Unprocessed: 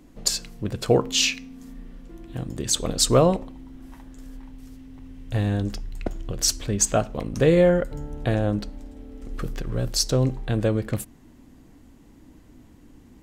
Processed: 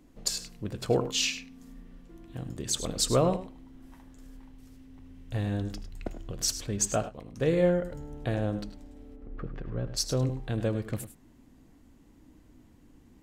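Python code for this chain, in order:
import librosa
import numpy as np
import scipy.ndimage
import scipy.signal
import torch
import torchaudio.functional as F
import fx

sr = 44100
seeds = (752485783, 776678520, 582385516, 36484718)

y = fx.lowpass(x, sr, hz=fx.line((9.15, 1400.0), (9.96, 2500.0)), slope=12, at=(9.15, 9.96), fade=0.02)
y = fx.echo_multitap(y, sr, ms=(79, 102), db=(-17.0, -12.5))
y = fx.upward_expand(y, sr, threshold_db=-29.0, expansion=1.5, at=(7.08, 7.83), fade=0.02)
y = y * librosa.db_to_amplitude(-7.0)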